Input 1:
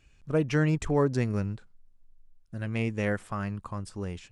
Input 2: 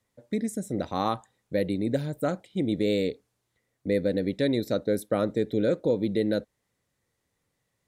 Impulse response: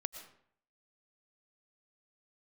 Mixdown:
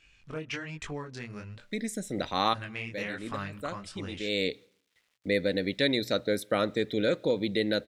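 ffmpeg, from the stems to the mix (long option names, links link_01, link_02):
-filter_complex "[0:a]acompressor=threshold=-31dB:ratio=16,flanger=delay=19.5:depth=6:speed=1.2,volume=-3dB,asplit=3[link_01][link_02][link_03];[link_02]volume=-23dB[link_04];[1:a]acrusher=bits=11:mix=0:aa=0.000001,adelay=1400,volume=-5dB,asplit=2[link_05][link_06];[link_06]volume=-21dB[link_07];[link_03]apad=whole_len=409005[link_08];[link_05][link_08]sidechaincompress=threshold=-53dB:ratio=8:attack=39:release=339[link_09];[2:a]atrim=start_sample=2205[link_10];[link_04][link_07]amix=inputs=2:normalize=0[link_11];[link_11][link_10]afir=irnorm=-1:irlink=0[link_12];[link_01][link_09][link_12]amix=inputs=3:normalize=0,equalizer=frequency=2900:width_type=o:width=2.6:gain=14,bandreject=frequency=60:width_type=h:width=6,bandreject=frequency=120:width_type=h:width=6"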